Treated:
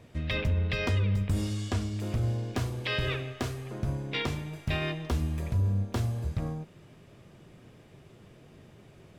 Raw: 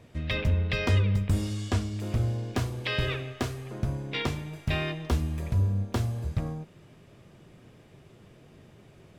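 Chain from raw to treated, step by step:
brickwall limiter −20 dBFS, peak gain reduction 5 dB

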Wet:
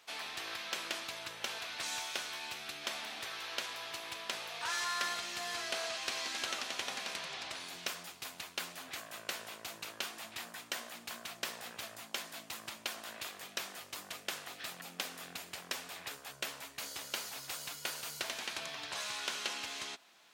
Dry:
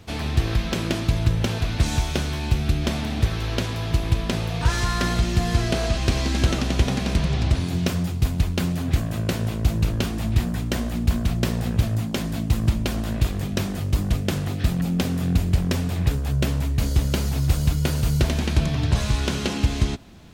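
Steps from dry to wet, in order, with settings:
high-pass filter 940 Hz 12 dB per octave
level −7 dB

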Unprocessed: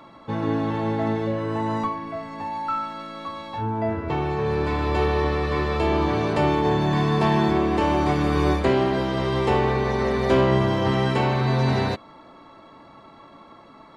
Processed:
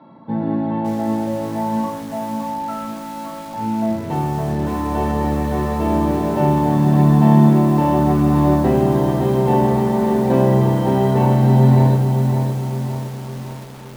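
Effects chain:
low-pass filter 3,600 Hz 24 dB per octave
convolution reverb RT60 0.50 s, pre-delay 3 ms, DRR 2.5 dB
feedback echo at a low word length 563 ms, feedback 55%, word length 4 bits, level −6 dB
level −11 dB

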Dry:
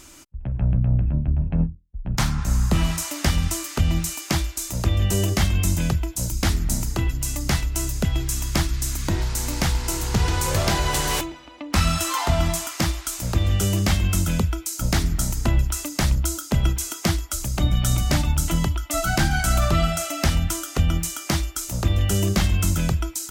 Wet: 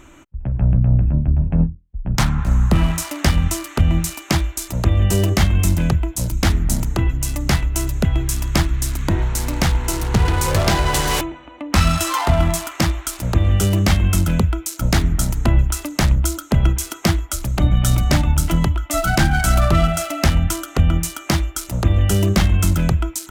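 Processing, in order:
adaptive Wiener filter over 9 samples
level +5 dB

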